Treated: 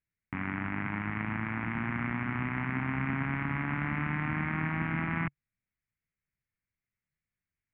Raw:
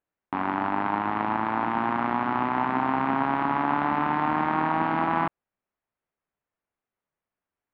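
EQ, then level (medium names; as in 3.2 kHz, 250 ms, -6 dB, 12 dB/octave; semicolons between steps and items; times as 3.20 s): FFT filter 140 Hz 0 dB, 320 Hz -16 dB, 880 Hz -25 dB, 2.2 kHz -2 dB, 4.4 kHz -30 dB; +6.0 dB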